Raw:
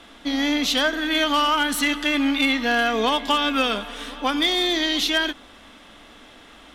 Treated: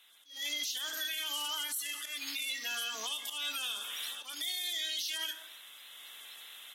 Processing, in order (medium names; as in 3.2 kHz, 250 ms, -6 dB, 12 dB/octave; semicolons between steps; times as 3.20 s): coarse spectral quantiser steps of 30 dB; slow attack 202 ms; reverberation RT60 0.70 s, pre-delay 8 ms, DRR 10 dB; transient shaper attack -8 dB, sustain +2 dB; level rider gain up to 13 dB; differentiator; compression 6:1, threshold -27 dBFS, peak gain reduction 12 dB; treble shelf 4.7 kHz +10 dB; peak limiter -17.5 dBFS, peak gain reduction 9.5 dB; trim -8.5 dB